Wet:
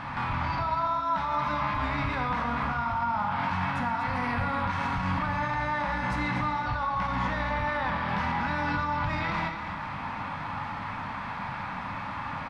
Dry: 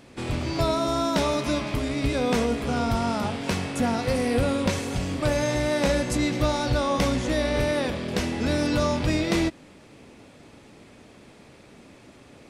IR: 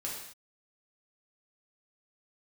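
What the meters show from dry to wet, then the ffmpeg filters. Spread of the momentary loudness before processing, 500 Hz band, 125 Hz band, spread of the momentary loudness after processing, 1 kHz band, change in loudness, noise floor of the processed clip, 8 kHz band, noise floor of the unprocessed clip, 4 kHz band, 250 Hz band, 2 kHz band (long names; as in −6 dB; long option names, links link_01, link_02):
4 LU, −12.5 dB, −4.5 dB, 7 LU, +4.5 dB, −4.5 dB, −36 dBFS, below −20 dB, −51 dBFS, −9.5 dB, −9.0 dB, +1.5 dB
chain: -filter_complex "[0:a]firequalizer=gain_entry='entry(170,0);entry(400,-19);entry(900,14);entry(2700,-2);entry(4300,-7);entry(7400,-22)':delay=0.05:min_phase=1,acompressor=threshold=-35dB:ratio=6,alimiter=level_in=10dB:limit=-24dB:level=0:latency=1:release=36,volume=-10dB,aecho=1:1:242:0.355,asplit=2[link_01][link_02];[1:a]atrim=start_sample=2205[link_03];[link_02][link_03]afir=irnorm=-1:irlink=0,volume=-2dB[link_04];[link_01][link_04]amix=inputs=2:normalize=0,volume=8dB"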